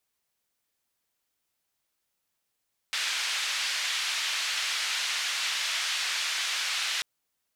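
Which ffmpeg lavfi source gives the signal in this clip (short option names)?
-f lavfi -i "anoisesrc=c=white:d=4.09:r=44100:seed=1,highpass=f=1700,lowpass=f=4200,volume=-16.1dB"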